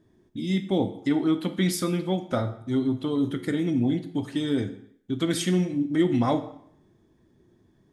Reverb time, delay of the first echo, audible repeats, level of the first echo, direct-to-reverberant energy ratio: 0.65 s, no echo, no echo, no echo, 8.5 dB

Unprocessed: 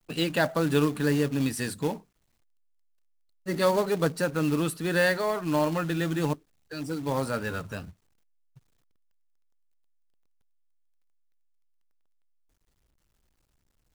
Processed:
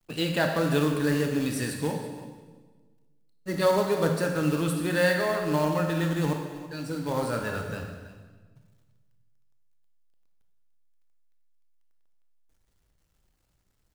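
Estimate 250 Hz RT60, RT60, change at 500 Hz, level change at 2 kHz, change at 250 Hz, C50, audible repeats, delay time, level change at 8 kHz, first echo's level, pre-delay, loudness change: 1.7 s, 1.4 s, +1.0 dB, 0.0 dB, +0.5 dB, 4.5 dB, 1, 327 ms, +0.5 dB, -16.5 dB, 23 ms, +0.5 dB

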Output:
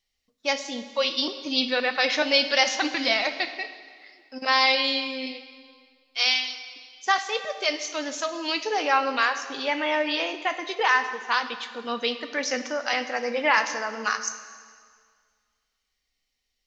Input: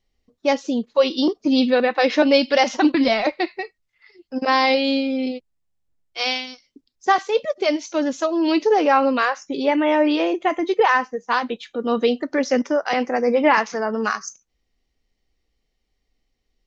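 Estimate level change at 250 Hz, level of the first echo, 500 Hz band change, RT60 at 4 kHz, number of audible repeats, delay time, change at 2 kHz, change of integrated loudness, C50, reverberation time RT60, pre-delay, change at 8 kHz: -13.5 dB, no echo, -9.5 dB, 1.8 s, no echo, no echo, 0.0 dB, -4.5 dB, 11.0 dB, 1.9 s, 6 ms, no reading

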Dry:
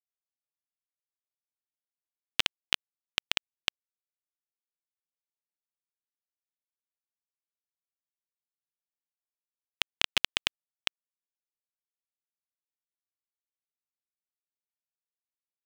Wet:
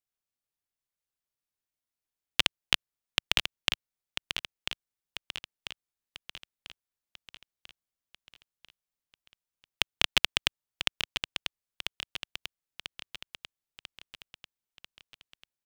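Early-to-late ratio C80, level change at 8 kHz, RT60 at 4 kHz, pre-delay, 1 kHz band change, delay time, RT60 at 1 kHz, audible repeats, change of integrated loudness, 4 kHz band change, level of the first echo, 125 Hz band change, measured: no reverb, +3.0 dB, no reverb, no reverb, +3.0 dB, 993 ms, no reverb, 5, -0.5 dB, +3.0 dB, -8.0 dB, +8.0 dB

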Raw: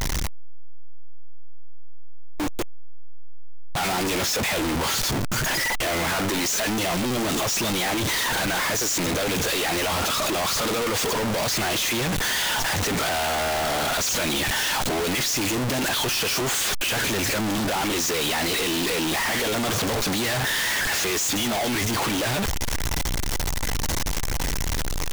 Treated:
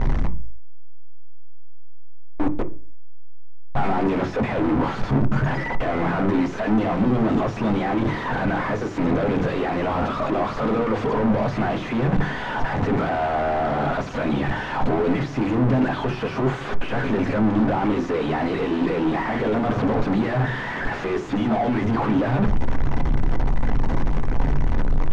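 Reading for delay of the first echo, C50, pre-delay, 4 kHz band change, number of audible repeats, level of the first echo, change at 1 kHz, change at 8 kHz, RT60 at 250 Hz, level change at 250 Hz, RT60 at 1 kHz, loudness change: no echo, 18.0 dB, 3 ms, -15.5 dB, no echo, no echo, +2.5 dB, under -25 dB, 0.50 s, +7.0 dB, 0.35 s, 0.0 dB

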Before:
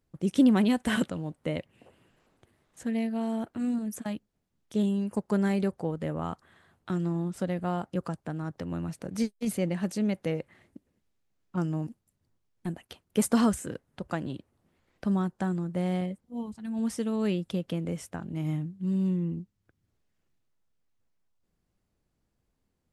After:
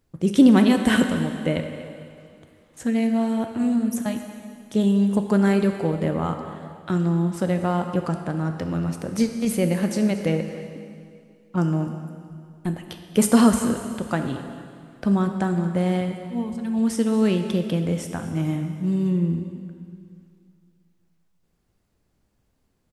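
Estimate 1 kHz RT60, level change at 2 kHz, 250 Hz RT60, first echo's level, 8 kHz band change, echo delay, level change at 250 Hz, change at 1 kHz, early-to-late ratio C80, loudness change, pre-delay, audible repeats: 2.3 s, +8.0 dB, 2.4 s, -17.5 dB, +8.0 dB, 236 ms, +8.0 dB, +8.0 dB, 7.0 dB, +8.0 dB, 6 ms, 1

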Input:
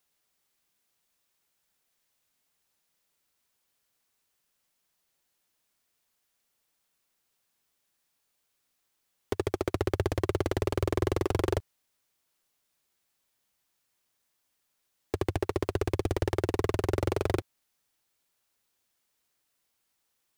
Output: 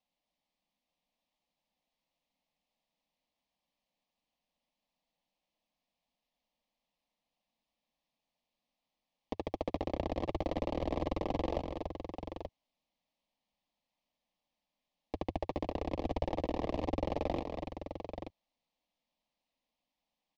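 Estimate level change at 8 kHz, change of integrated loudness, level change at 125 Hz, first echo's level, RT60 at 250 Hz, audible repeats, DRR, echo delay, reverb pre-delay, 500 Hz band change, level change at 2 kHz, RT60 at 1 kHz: under -15 dB, -7.0 dB, -10.0 dB, -6.5 dB, no reverb, 2, no reverb, 288 ms, no reverb, -6.0 dB, -10.0 dB, no reverb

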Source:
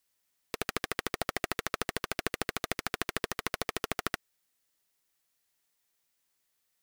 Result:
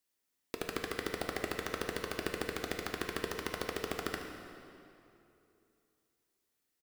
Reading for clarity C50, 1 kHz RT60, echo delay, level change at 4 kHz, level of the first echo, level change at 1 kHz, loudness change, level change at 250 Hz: 4.0 dB, 2.7 s, 73 ms, -5.0 dB, -12.5 dB, -4.0 dB, -3.0 dB, 0.0 dB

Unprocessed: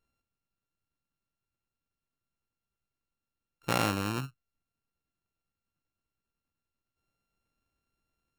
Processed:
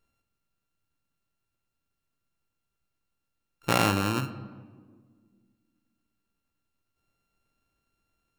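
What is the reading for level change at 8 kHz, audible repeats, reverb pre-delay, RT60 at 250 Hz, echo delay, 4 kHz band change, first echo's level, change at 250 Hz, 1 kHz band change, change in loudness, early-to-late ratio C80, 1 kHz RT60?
+4.5 dB, no echo, 3 ms, 2.6 s, no echo, +5.0 dB, no echo, +5.0 dB, +5.0 dB, +4.0 dB, 15.0 dB, 1.5 s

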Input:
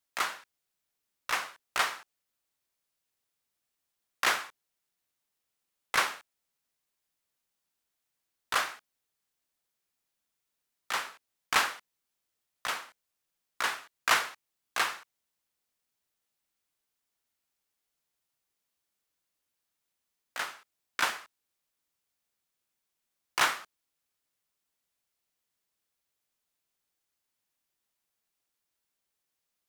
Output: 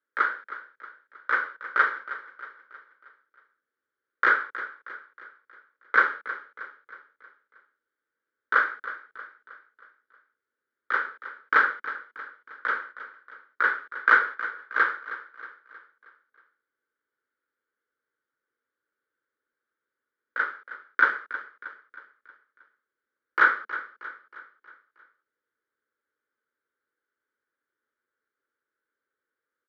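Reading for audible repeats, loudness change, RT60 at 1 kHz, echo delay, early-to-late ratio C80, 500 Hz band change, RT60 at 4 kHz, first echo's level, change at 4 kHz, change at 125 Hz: 4, +5.5 dB, no reverb, 316 ms, no reverb, +4.5 dB, no reverb, -14.0 dB, -12.0 dB, no reading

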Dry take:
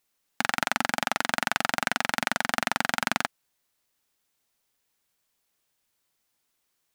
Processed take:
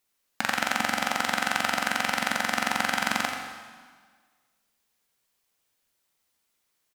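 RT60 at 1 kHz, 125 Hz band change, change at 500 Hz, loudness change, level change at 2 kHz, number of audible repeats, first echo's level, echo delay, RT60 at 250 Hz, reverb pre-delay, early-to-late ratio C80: 1.6 s, -1.0 dB, 0.0 dB, +0.5 dB, +1.0 dB, 1, -7.5 dB, 85 ms, 1.7 s, 5 ms, 4.0 dB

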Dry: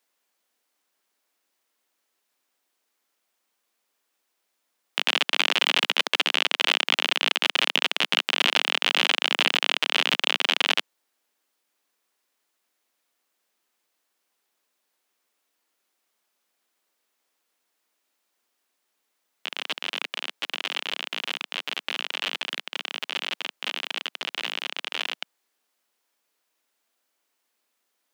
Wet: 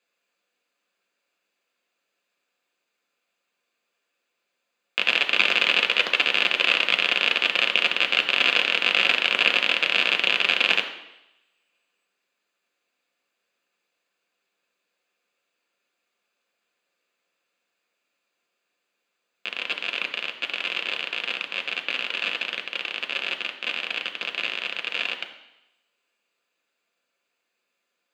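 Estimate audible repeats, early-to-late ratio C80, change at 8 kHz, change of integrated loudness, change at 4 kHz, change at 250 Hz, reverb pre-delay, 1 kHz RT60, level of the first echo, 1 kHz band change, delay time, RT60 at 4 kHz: no echo, 12.0 dB, -6.0 dB, +2.5 dB, 0.0 dB, 0.0 dB, 3 ms, 0.85 s, no echo, -0.5 dB, no echo, 0.90 s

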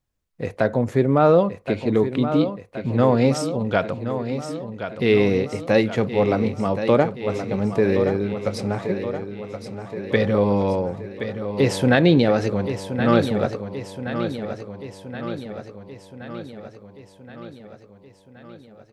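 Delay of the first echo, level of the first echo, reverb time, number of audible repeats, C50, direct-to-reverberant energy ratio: 1073 ms, -9.5 dB, no reverb, 6, no reverb, no reverb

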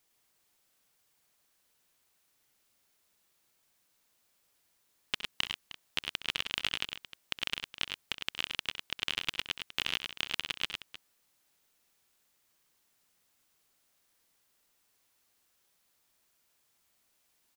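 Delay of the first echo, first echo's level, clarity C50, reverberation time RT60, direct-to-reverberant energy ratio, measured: 65 ms, -13.5 dB, no reverb, no reverb, no reverb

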